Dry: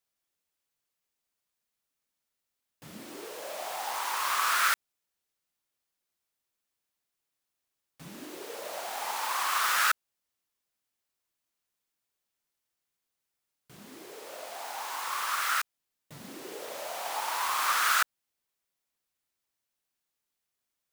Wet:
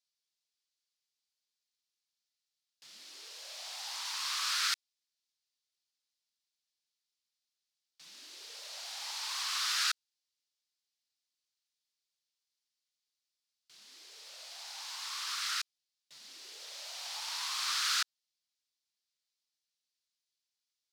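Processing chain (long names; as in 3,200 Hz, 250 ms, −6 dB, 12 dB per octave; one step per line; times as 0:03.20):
resonant band-pass 4,600 Hz, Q 2.1
level +4.5 dB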